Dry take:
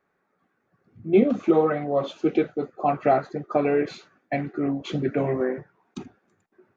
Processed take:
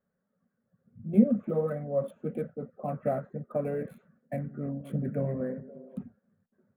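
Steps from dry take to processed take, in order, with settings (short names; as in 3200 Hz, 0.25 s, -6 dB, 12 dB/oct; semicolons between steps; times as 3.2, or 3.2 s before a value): Wiener smoothing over 9 samples; EQ curve 130 Hz 0 dB, 230 Hz +5 dB, 330 Hz -19 dB, 540 Hz 0 dB, 780 Hz -15 dB, 1700 Hz -10 dB, 2400 Hz -18 dB, 3500 Hz -20 dB, 5600 Hz -27 dB, 10000 Hz +3 dB; 3.88–5.98 delay with a stepping band-pass 0.174 s, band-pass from 190 Hz, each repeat 0.7 oct, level -10.5 dB; gain -2.5 dB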